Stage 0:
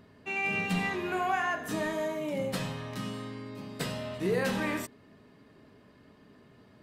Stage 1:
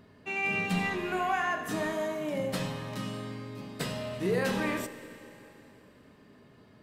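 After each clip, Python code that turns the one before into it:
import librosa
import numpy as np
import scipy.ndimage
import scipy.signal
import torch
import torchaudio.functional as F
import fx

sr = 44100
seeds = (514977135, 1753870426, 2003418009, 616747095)

y = fx.rev_schroeder(x, sr, rt60_s=3.2, comb_ms=29, drr_db=11.5)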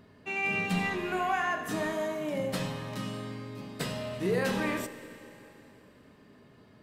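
y = x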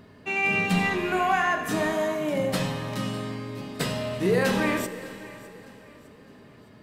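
y = fx.echo_feedback(x, sr, ms=607, feedback_pct=40, wet_db=-20.0)
y = F.gain(torch.from_numpy(y), 6.0).numpy()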